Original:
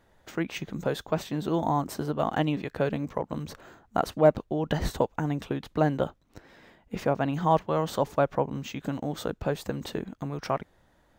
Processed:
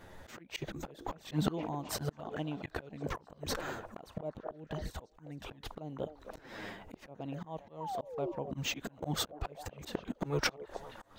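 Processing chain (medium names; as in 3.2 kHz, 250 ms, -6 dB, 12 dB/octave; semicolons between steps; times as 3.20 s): touch-sensitive flanger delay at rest 11.6 ms, full sweep at -22.5 dBFS; painted sound fall, 7.80–8.32 s, 330–1000 Hz -26 dBFS; inverted gate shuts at -24 dBFS, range -24 dB; repeats whose band climbs or falls 261 ms, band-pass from 500 Hz, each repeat 0.7 oct, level -11.5 dB; slow attack 251 ms; trim +13 dB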